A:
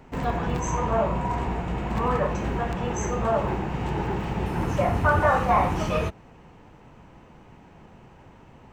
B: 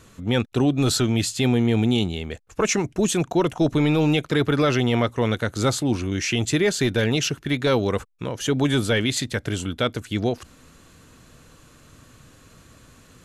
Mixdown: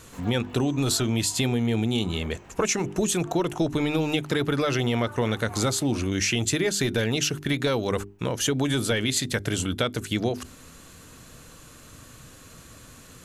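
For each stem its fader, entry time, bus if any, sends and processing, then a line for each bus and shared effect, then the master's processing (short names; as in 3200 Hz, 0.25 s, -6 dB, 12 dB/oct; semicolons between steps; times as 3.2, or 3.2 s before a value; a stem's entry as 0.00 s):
-12.0 dB, 0.00 s, no send, tilt +2 dB/oct; auto duck -7 dB, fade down 1.90 s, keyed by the second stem
+2.5 dB, 0.00 s, no send, high shelf 7100 Hz +7.5 dB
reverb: off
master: notches 50/100/150/200/250/300/350/400 Hz; compressor, threshold -21 dBFS, peak gain reduction 8.5 dB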